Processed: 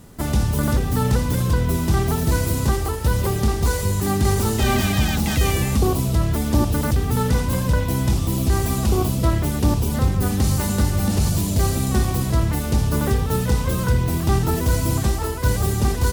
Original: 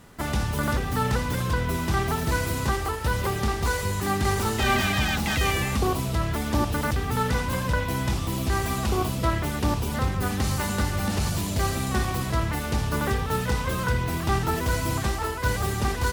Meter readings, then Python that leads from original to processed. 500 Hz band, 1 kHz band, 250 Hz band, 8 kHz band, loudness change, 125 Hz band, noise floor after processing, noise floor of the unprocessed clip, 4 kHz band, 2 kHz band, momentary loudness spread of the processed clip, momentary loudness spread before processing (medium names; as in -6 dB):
+4.0 dB, -0.5 dB, +6.5 dB, +5.5 dB, +5.0 dB, +7.0 dB, -24 dBFS, -30 dBFS, +1.5 dB, -2.0 dB, 2 LU, 3 LU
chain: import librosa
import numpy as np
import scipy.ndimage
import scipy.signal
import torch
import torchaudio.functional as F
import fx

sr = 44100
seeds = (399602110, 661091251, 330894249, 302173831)

y = fx.peak_eq(x, sr, hz=1700.0, db=-10.0, octaves=2.9)
y = y * librosa.db_to_amplitude(7.5)